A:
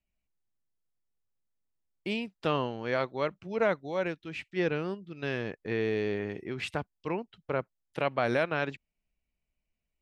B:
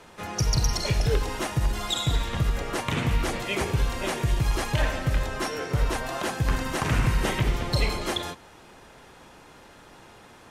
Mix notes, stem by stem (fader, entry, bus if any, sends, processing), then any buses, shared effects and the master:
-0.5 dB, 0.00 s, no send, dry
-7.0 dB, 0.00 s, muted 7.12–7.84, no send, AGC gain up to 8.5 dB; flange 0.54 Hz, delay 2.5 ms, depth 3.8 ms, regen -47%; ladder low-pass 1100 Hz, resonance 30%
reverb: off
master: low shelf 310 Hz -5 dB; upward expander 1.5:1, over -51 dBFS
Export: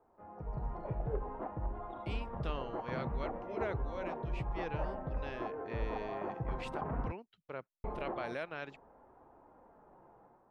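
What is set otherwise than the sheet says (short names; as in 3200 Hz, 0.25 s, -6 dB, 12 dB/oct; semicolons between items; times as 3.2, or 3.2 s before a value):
stem A -0.5 dB -> -11.5 dB; master: missing upward expander 1.5:1, over -51 dBFS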